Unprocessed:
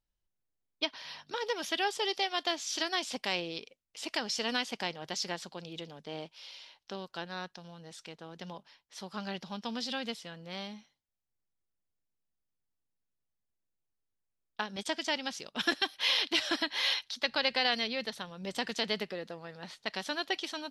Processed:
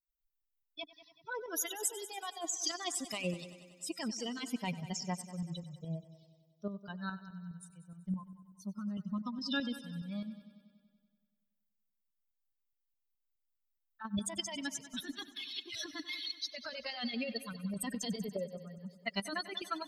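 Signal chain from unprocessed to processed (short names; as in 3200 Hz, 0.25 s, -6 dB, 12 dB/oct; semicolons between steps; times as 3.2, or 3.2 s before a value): per-bin expansion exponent 3; limiter -30.5 dBFS, peak gain reduction 12 dB; negative-ratio compressor -51 dBFS, ratio -1; tremolo saw up 4.6 Hz, depth 55%; speed mistake 24 fps film run at 25 fps; multi-head echo 95 ms, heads first and second, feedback 56%, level -18 dB; gain +15.5 dB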